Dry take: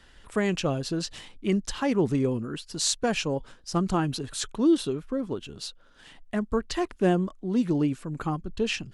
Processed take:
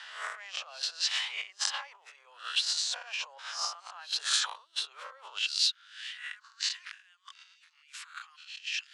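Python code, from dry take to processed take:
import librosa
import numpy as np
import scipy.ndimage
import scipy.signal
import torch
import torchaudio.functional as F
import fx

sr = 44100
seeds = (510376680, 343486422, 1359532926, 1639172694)

y = fx.spec_swells(x, sr, rise_s=0.49)
y = scipy.signal.sosfilt(scipy.signal.butter(2, 5100.0, 'lowpass', fs=sr, output='sos'), y)
y = fx.over_compress(y, sr, threshold_db=-36.0, ratio=-1.0)
y = fx.bessel_highpass(y, sr, hz=fx.steps((0.0, 1300.0), (5.46, 2500.0)), order=8)
y = y * librosa.db_to_amplitude(5.0)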